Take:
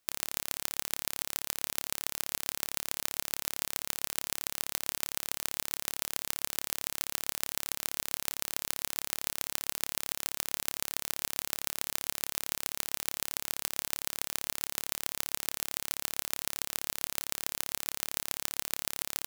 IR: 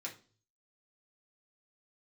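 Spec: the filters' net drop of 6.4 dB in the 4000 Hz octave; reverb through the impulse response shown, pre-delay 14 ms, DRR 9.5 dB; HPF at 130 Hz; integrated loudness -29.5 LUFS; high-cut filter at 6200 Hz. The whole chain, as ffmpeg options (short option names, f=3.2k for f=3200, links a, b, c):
-filter_complex "[0:a]highpass=130,lowpass=6.2k,equalizer=f=4k:t=o:g=-7.5,asplit=2[a][b];[1:a]atrim=start_sample=2205,adelay=14[c];[b][c]afir=irnorm=-1:irlink=0,volume=-8.5dB[d];[a][d]amix=inputs=2:normalize=0,volume=12.5dB"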